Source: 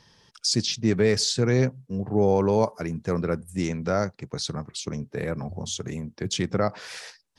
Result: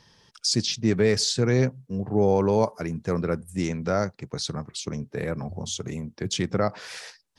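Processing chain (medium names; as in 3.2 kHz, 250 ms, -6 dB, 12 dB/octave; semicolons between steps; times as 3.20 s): 5.59–6.13 s: band-stop 1.7 kHz, Q 8.3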